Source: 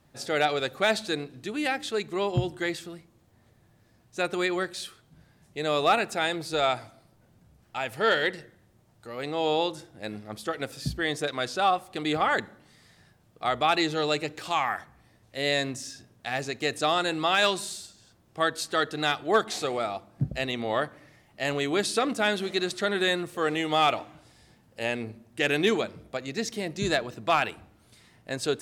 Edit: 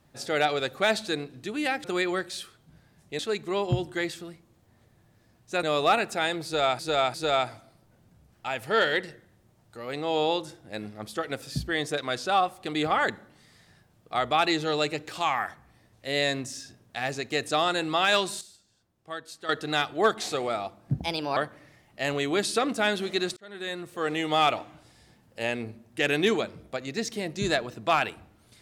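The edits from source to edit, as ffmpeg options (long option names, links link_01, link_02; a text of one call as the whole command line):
ffmpeg -i in.wav -filter_complex "[0:a]asplit=11[link_01][link_02][link_03][link_04][link_05][link_06][link_07][link_08][link_09][link_10][link_11];[link_01]atrim=end=1.842[link_12];[link_02]atrim=start=4.278:end=5.632[link_13];[link_03]atrim=start=1.838:end=4.282[link_14];[link_04]atrim=start=5.628:end=6.792[link_15];[link_05]atrim=start=6.438:end=6.792[link_16];[link_06]atrim=start=6.438:end=17.712[link_17];[link_07]atrim=start=17.708:end=18.792,asetpts=PTS-STARTPTS,volume=-11.5dB[link_18];[link_08]atrim=start=18.788:end=20.284[link_19];[link_09]atrim=start=20.28:end=20.77,asetpts=PTS-STARTPTS,asetrate=56007,aresample=44100[link_20];[link_10]atrim=start=20.766:end=22.77,asetpts=PTS-STARTPTS,afade=type=out:start_time=2:duration=0.004:curve=hsin[link_21];[link_11]atrim=start=22.77,asetpts=PTS-STARTPTS,afade=type=in:duration=0.88[link_22];[link_12][link_13]acrossfade=duration=0.004:curve1=hsin:curve2=hsin[link_23];[link_23][link_14]acrossfade=duration=0.004:curve1=hsin:curve2=hsin[link_24];[link_24][link_15]acrossfade=duration=0.004:curve1=hsin:curve2=hsin[link_25];[link_25][link_16]acrossfade=duration=0.004:curve1=hsin:curve2=hsin[link_26];[link_26][link_17]acrossfade=duration=0.004:curve1=hsin:curve2=hsin[link_27];[link_27][link_18]acrossfade=duration=0.004:curve1=hsin:curve2=hsin[link_28];[link_28][link_19]acrossfade=duration=0.004:curve1=hsin:curve2=hsin[link_29];[link_29][link_20]acrossfade=duration=0.004:curve1=hsin:curve2=hsin[link_30];[link_21][link_22]concat=n=2:v=0:a=1[link_31];[link_30][link_31]acrossfade=duration=0.004:curve1=hsin:curve2=hsin" out.wav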